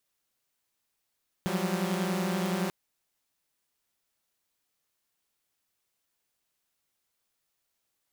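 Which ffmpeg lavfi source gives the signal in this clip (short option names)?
-f lavfi -i "aevalsrc='0.0335*((2*mod(174.61*t,1)-1)+(2*mod(185*t,1)-1)+(2*mod(196*t,1)-1))':d=1.24:s=44100"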